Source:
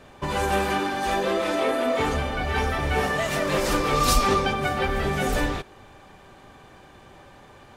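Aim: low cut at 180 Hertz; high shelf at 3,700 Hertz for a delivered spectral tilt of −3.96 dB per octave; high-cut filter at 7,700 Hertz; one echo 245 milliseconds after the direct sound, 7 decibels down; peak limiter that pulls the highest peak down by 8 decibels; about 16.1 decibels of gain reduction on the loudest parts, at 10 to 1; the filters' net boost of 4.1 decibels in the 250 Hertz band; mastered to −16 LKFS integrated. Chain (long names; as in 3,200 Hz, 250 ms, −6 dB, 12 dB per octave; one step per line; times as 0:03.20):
high-pass filter 180 Hz
low-pass filter 7,700 Hz
parametric band 250 Hz +6.5 dB
high-shelf EQ 3,700 Hz +5 dB
downward compressor 10 to 1, threshold −32 dBFS
brickwall limiter −30.5 dBFS
single-tap delay 245 ms −7 dB
level +23 dB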